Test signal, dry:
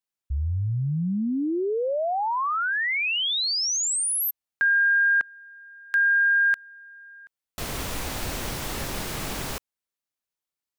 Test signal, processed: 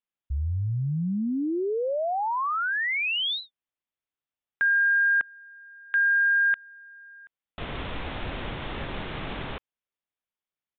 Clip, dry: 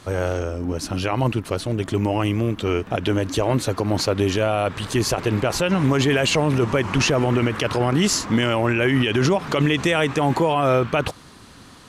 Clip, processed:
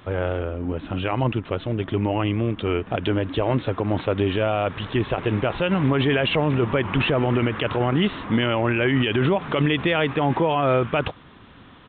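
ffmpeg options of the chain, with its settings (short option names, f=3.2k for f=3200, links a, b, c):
-af "aresample=8000,aresample=44100,volume=-1.5dB"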